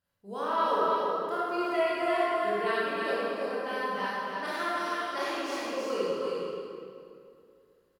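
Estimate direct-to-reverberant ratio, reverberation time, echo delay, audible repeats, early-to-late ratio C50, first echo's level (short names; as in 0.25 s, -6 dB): -10.5 dB, 2.4 s, 0.321 s, 1, -6.5 dB, -3.0 dB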